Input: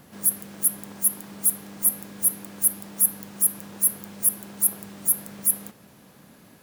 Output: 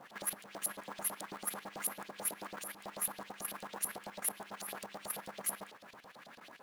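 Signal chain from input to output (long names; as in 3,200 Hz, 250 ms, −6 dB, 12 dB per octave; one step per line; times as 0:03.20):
auto-filter band-pass saw up 9.1 Hz 580–4,400 Hz
output level in coarse steps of 11 dB
floating-point word with a short mantissa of 2 bits
level +11.5 dB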